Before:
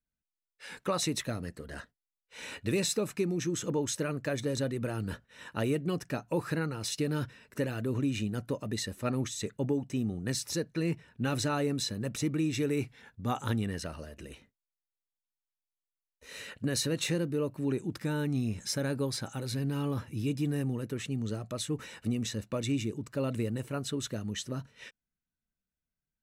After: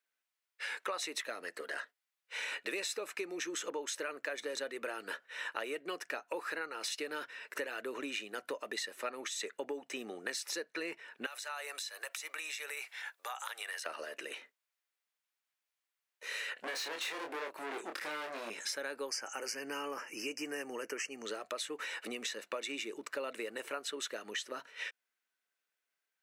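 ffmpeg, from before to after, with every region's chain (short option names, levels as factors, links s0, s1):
-filter_complex "[0:a]asettb=1/sr,asplit=3[s0][s1][s2];[s0]atrim=end=11.264[s3];[s1]atrim=start=11.26:end=13.86,asetpts=PTS-STARTPTS,afade=t=in:d=0.004:c=qsin,afade=t=out:st=2.596:d=0.004:c=qsin,highpass=f=640:w=0.5412,highpass=f=640:w=1.3066,highshelf=f=6000:g=10.5,acompressor=threshold=0.00562:ratio=4:attack=3.2:release=140:knee=1:detection=peak[s4];[s2]atrim=start=13.856[s5];[s3][s4]acrossfade=d=0.004:c1=hsin:c2=qsin[s6];[s6][s5]acrossfade=d=0.004:c1=qsin:c2=hsin,asettb=1/sr,asplit=3[s7][s8][s9];[s7]atrim=end=16.544[s10];[s8]atrim=start=16.54:end=18.5,asetpts=PTS-STARTPTS,afade=t=in:d=0.004:c=qsin,afade=t=out:st=1.956:d=0.004:c=qsin,acrossover=split=6800[s11][s12];[s12]acompressor=threshold=0.00398:ratio=4:attack=1:release=60[s13];[s11][s13]amix=inputs=2:normalize=0,asoftclip=type=hard:threshold=0.0141,asplit=2[s14][s15];[s15]adelay=26,volume=0.596[s16];[s14][s16]amix=inputs=2:normalize=0,atrim=end_sample=86436[s17];[s9]atrim=start=18.496[s18];[s10][s17]acrossfade=d=0.004:c1=hsin:c2=qsin[s19];[s19][s18]acrossfade=d=0.004:c1=qsin:c2=hsin,asettb=1/sr,asplit=3[s20][s21][s22];[s20]atrim=end=19.084[s23];[s21]atrim=start=19.08:end=21.25,asetpts=PTS-STARTPTS,afade=t=in:d=0.004:c=qsin,afade=t=out:st=2.166:d=0.004:c=qsin,asuperstop=centerf=3700:order=12:qfactor=2.6,equalizer=f=5900:w=2.3:g=9.5[s24];[s22]atrim=start=21.246[s25];[s23][s24]acrossfade=d=0.004:c1=hsin:c2=qsin[s26];[s26][s25]acrossfade=d=0.004:c1=qsin:c2=hsin,highpass=f=390:w=0.5412,highpass=f=390:w=1.3066,equalizer=f=1900:t=o:w=1.9:g=8.5,acompressor=threshold=0.00891:ratio=4,volume=1.5"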